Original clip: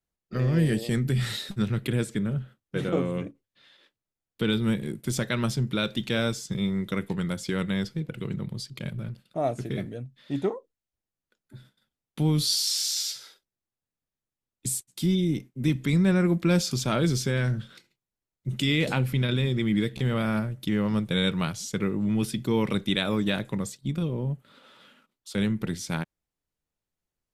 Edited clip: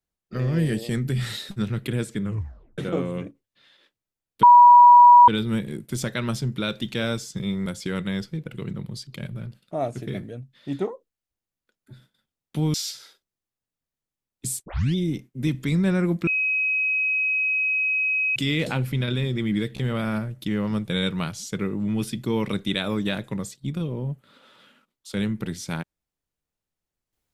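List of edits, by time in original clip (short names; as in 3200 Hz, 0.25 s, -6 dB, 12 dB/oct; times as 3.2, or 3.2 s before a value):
2.23 tape stop 0.55 s
4.43 add tone 969 Hz -7 dBFS 0.85 s
6.81–7.29 cut
12.37–12.95 cut
14.87 tape start 0.29 s
16.48–18.57 bleep 2540 Hz -20 dBFS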